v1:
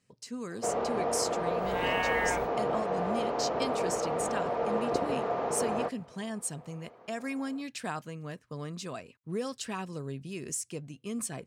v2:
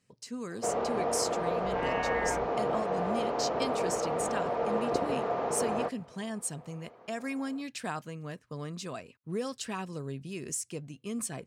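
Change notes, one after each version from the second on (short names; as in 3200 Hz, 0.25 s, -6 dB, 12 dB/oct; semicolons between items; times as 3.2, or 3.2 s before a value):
second sound: add air absorption 480 m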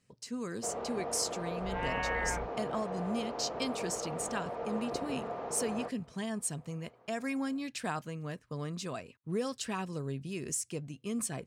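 first sound -8.0 dB; master: add low shelf 63 Hz +8 dB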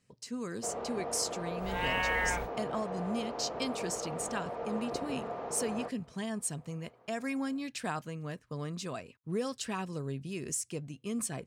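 second sound: remove air absorption 480 m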